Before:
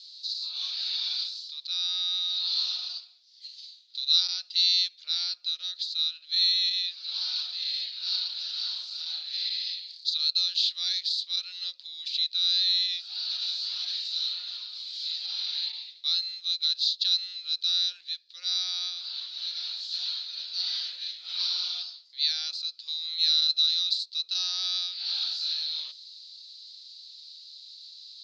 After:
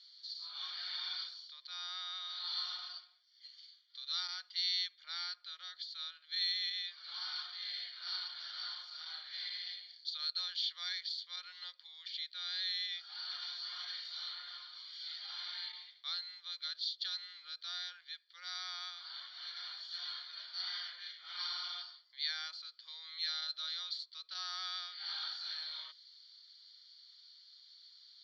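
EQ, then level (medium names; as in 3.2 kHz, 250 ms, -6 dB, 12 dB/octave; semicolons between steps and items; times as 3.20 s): Savitzky-Golay filter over 41 samples; high-pass 1.3 kHz 12 dB/octave; distance through air 50 m; +8.5 dB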